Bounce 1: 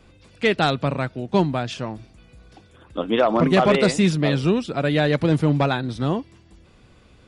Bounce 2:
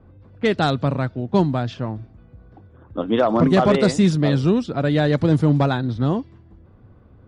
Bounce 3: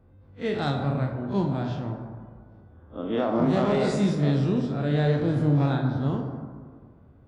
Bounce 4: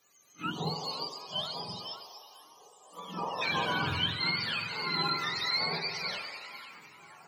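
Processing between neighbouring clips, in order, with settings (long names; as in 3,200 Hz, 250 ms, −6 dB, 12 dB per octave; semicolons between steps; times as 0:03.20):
low-pass filter 9,400 Hz 12 dB per octave; low-pass that shuts in the quiet parts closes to 1,300 Hz, open at −15 dBFS; graphic EQ with 15 bands 100 Hz +9 dB, 250 Hz +3 dB, 2,500 Hz −7 dB
spectrum smeared in time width 80 ms; dense smooth reverb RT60 1.8 s, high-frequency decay 0.35×, DRR 2.5 dB; level −6.5 dB
frequency axis turned over on the octave scale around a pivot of 780 Hz; gain on a spectral selection 0:00.51–0:03.42, 1,300–2,800 Hz −19 dB; echo through a band-pass that steps 498 ms, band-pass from 2,500 Hz, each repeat −0.7 octaves, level −10.5 dB; level −4 dB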